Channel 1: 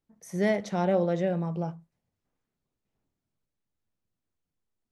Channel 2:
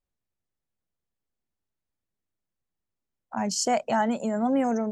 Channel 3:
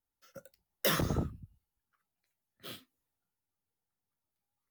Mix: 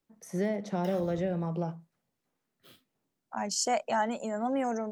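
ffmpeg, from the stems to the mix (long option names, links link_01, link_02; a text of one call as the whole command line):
ffmpeg -i stem1.wav -i stem2.wav -i stem3.wav -filter_complex "[0:a]highpass=160,acrossover=split=360|1100[link_01][link_02][link_03];[link_01]acompressor=threshold=-33dB:ratio=4[link_04];[link_02]acompressor=threshold=-37dB:ratio=4[link_05];[link_03]acompressor=threshold=-50dB:ratio=4[link_06];[link_04][link_05][link_06]amix=inputs=3:normalize=0,volume=2.5dB[link_07];[1:a]equalizer=frequency=87:width=0.32:gain=-9,volume=-2.5dB[link_08];[2:a]acrossover=split=5900[link_09][link_10];[link_10]acompressor=threshold=-40dB:ratio=4:attack=1:release=60[link_11];[link_09][link_11]amix=inputs=2:normalize=0,acompressor=threshold=-33dB:ratio=6,volume=-11.5dB[link_12];[link_07][link_08][link_12]amix=inputs=3:normalize=0" out.wav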